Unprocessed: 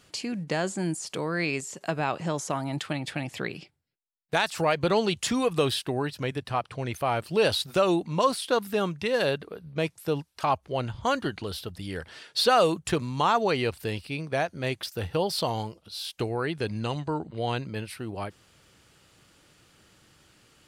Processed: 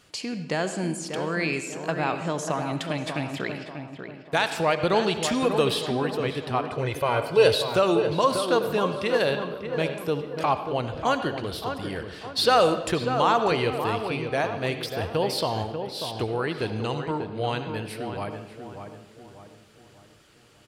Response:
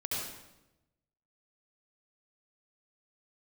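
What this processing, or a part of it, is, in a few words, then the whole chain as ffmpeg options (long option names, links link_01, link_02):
filtered reverb send: -filter_complex "[0:a]asettb=1/sr,asplit=3[link_01][link_02][link_03];[link_01]atrim=end=6.674[link_04];[link_02]atrim=start=6.67:end=7.47,asetpts=PTS-STARTPTS,afade=type=in:duration=0.004:curve=qsin,afade=type=out:start_time=0.796:duration=0.004:curve=qsin,aecho=1:1:2:0.76,atrim=end_sample=35280[link_05];[link_03]atrim=start=7.466[link_06];[link_04][link_05]acrossfade=duration=0.004:curve1=hsin:curve2=qsin[link_07];[link_07][link_06]acrossfade=duration=0.004:curve1=qsin:curve2=hsin,asplit=2[link_08][link_09];[link_09]highpass=250,lowpass=5400[link_10];[1:a]atrim=start_sample=2205[link_11];[link_10][link_11]afir=irnorm=-1:irlink=0,volume=-11.5dB[link_12];[link_08][link_12]amix=inputs=2:normalize=0,asplit=2[link_13][link_14];[link_14]adelay=591,lowpass=frequency=1700:poles=1,volume=-7dB,asplit=2[link_15][link_16];[link_16]adelay=591,lowpass=frequency=1700:poles=1,volume=0.44,asplit=2[link_17][link_18];[link_18]adelay=591,lowpass=frequency=1700:poles=1,volume=0.44,asplit=2[link_19][link_20];[link_20]adelay=591,lowpass=frequency=1700:poles=1,volume=0.44,asplit=2[link_21][link_22];[link_22]adelay=591,lowpass=frequency=1700:poles=1,volume=0.44[link_23];[link_13][link_15][link_17][link_19][link_21][link_23]amix=inputs=6:normalize=0"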